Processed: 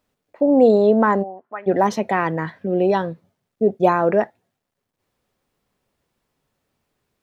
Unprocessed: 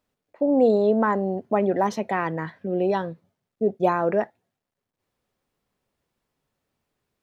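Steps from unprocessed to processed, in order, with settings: 1.22–1.66 band-pass 700 Hz -> 1900 Hz, Q 3.6; gain +5 dB

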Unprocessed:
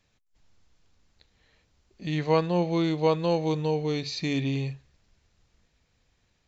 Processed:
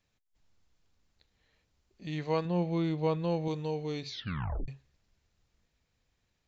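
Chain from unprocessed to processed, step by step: 2.45–3.48 tone controls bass +6 dB, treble -7 dB; 4.07 tape stop 0.61 s; gain -7.5 dB

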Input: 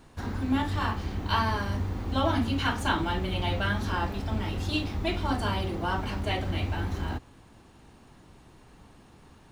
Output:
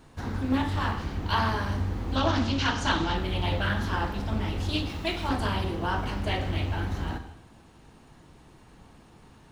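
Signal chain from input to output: 2.16–3.15 synth low-pass 5700 Hz, resonance Q 2.8; 4.89–5.29 tilt +1.5 dB/oct; non-linear reverb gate 0.31 s falling, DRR 7.5 dB; Doppler distortion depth 0.29 ms

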